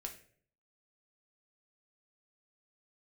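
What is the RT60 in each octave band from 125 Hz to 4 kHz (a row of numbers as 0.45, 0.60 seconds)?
0.70, 0.65, 0.65, 0.45, 0.50, 0.40 seconds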